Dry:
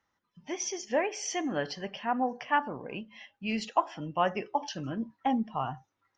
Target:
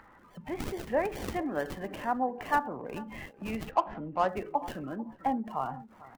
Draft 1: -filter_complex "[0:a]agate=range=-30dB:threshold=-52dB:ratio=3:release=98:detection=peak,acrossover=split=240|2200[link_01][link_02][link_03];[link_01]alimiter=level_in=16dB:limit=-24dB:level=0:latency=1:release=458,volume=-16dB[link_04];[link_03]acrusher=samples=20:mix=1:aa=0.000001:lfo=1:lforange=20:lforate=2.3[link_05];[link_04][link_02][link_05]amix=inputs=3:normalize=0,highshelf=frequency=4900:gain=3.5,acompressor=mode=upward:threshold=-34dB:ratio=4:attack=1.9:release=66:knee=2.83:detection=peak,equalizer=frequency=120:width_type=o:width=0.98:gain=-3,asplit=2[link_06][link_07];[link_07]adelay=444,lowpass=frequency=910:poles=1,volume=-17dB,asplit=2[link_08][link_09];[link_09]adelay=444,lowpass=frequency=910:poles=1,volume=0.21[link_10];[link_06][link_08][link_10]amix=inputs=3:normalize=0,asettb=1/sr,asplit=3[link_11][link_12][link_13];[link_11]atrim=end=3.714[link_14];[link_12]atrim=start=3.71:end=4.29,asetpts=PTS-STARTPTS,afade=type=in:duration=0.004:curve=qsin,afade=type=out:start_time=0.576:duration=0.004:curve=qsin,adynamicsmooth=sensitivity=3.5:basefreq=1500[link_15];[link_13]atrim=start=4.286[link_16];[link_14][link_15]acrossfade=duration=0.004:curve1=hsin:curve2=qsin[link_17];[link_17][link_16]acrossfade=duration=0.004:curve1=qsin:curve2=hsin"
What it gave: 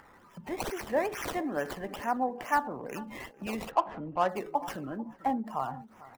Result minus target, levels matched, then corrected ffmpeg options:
sample-and-hold swept by an LFO: distortion −13 dB
-filter_complex "[0:a]agate=range=-30dB:threshold=-52dB:ratio=3:release=98:detection=peak,acrossover=split=240|2200[link_01][link_02][link_03];[link_01]alimiter=level_in=16dB:limit=-24dB:level=0:latency=1:release=458,volume=-16dB[link_04];[link_03]acrusher=samples=65:mix=1:aa=0.000001:lfo=1:lforange=65:lforate=2.3[link_05];[link_04][link_02][link_05]amix=inputs=3:normalize=0,highshelf=frequency=4900:gain=3.5,acompressor=mode=upward:threshold=-34dB:ratio=4:attack=1.9:release=66:knee=2.83:detection=peak,equalizer=frequency=120:width_type=o:width=0.98:gain=-3,asplit=2[link_06][link_07];[link_07]adelay=444,lowpass=frequency=910:poles=1,volume=-17dB,asplit=2[link_08][link_09];[link_09]adelay=444,lowpass=frequency=910:poles=1,volume=0.21[link_10];[link_06][link_08][link_10]amix=inputs=3:normalize=0,asettb=1/sr,asplit=3[link_11][link_12][link_13];[link_11]atrim=end=3.714[link_14];[link_12]atrim=start=3.71:end=4.29,asetpts=PTS-STARTPTS,afade=type=in:duration=0.004:curve=qsin,afade=type=out:start_time=0.576:duration=0.004:curve=qsin,adynamicsmooth=sensitivity=3.5:basefreq=1500[link_15];[link_13]atrim=start=4.286[link_16];[link_14][link_15]acrossfade=duration=0.004:curve1=hsin:curve2=qsin[link_17];[link_17][link_16]acrossfade=duration=0.004:curve1=qsin:curve2=hsin"

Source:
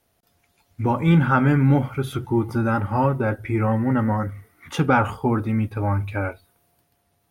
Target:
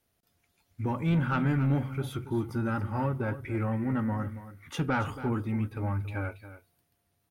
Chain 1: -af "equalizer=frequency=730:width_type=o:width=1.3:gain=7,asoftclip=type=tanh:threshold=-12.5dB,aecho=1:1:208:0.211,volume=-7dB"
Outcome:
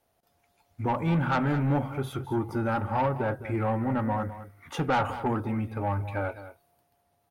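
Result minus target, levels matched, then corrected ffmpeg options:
echo 70 ms early; 1,000 Hz band +5.0 dB
-af "equalizer=frequency=730:width_type=o:width=1.3:gain=-4.5,asoftclip=type=tanh:threshold=-12.5dB,aecho=1:1:278:0.211,volume=-7dB"

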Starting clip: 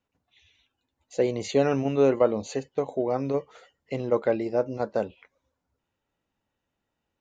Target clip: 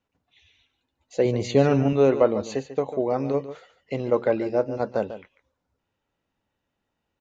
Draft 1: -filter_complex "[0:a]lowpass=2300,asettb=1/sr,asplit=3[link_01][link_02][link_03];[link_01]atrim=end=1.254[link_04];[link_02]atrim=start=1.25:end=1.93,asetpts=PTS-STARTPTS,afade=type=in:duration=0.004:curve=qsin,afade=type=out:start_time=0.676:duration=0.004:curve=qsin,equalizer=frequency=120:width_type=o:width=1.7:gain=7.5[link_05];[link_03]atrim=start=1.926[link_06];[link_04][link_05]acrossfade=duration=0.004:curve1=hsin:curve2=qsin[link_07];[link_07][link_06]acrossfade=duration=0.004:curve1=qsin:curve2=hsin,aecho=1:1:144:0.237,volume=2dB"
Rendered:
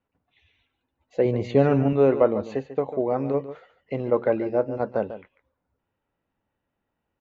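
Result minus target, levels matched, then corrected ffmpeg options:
8,000 Hz band −16.0 dB
-filter_complex "[0:a]lowpass=6600,asettb=1/sr,asplit=3[link_01][link_02][link_03];[link_01]atrim=end=1.254[link_04];[link_02]atrim=start=1.25:end=1.93,asetpts=PTS-STARTPTS,afade=type=in:duration=0.004:curve=qsin,afade=type=out:start_time=0.676:duration=0.004:curve=qsin,equalizer=frequency=120:width_type=o:width=1.7:gain=7.5[link_05];[link_03]atrim=start=1.926[link_06];[link_04][link_05]acrossfade=duration=0.004:curve1=hsin:curve2=qsin[link_07];[link_07][link_06]acrossfade=duration=0.004:curve1=qsin:curve2=hsin,aecho=1:1:144:0.237,volume=2dB"

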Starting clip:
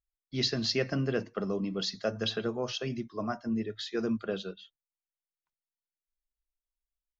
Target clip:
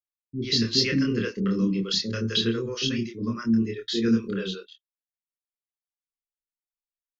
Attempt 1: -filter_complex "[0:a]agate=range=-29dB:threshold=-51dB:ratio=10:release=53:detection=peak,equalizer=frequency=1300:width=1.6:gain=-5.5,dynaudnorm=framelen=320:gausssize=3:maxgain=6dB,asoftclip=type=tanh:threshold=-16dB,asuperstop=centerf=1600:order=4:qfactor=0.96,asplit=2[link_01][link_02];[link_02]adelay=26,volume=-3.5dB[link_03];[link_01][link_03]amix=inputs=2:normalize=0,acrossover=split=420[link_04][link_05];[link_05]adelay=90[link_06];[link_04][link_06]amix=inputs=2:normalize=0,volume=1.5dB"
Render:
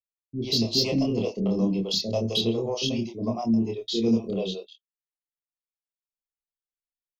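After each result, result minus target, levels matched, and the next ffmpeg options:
soft clipping: distortion +17 dB; 2,000 Hz band −9.0 dB
-filter_complex "[0:a]agate=range=-29dB:threshold=-51dB:ratio=10:release=53:detection=peak,equalizer=frequency=1300:width=1.6:gain=-5.5,dynaudnorm=framelen=320:gausssize=3:maxgain=6dB,asoftclip=type=tanh:threshold=-6dB,asuperstop=centerf=1600:order=4:qfactor=0.96,asplit=2[link_01][link_02];[link_02]adelay=26,volume=-3.5dB[link_03];[link_01][link_03]amix=inputs=2:normalize=0,acrossover=split=420[link_04][link_05];[link_05]adelay=90[link_06];[link_04][link_06]amix=inputs=2:normalize=0,volume=1.5dB"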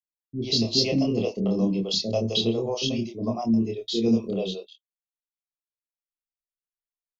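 2,000 Hz band −8.5 dB
-filter_complex "[0:a]agate=range=-29dB:threshold=-51dB:ratio=10:release=53:detection=peak,equalizer=frequency=1300:width=1.6:gain=-5.5,dynaudnorm=framelen=320:gausssize=3:maxgain=6dB,asoftclip=type=tanh:threshold=-6dB,asuperstop=centerf=720:order=4:qfactor=0.96,asplit=2[link_01][link_02];[link_02]adelay=26,volume=-3.5dB[link_03];[link_01][link_03]amix=inputs=2:normalize=0,acrossover=split=420[link_04][link_05];[link_05]adelay=90[link_06];[link_04][link_06]amix=inputs=2:normalize=0,volume=1.5dB"

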